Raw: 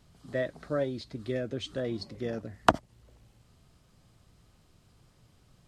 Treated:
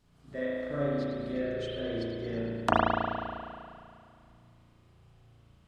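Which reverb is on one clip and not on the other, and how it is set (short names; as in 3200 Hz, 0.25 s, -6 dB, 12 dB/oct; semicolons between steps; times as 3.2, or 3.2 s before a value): spring tank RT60 2.3 s, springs 35 ms, chirp 80 ms, DRR -9 dB; gain -8.5 dB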